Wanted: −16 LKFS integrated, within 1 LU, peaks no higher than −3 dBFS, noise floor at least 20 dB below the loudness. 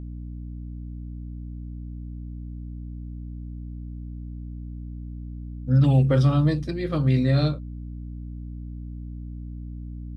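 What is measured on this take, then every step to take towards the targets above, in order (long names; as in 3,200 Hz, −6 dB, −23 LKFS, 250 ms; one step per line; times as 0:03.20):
mains hum 60 Hz; hum harmonics up to 300 Hz; level of the hum −33 dBFS; integrated loudness −21.5 LKFS; sample peak −9.0 dBFS; target loudness −16.0 LKFS
→ hum removal 60 Hz, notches 5
level +5.5 dB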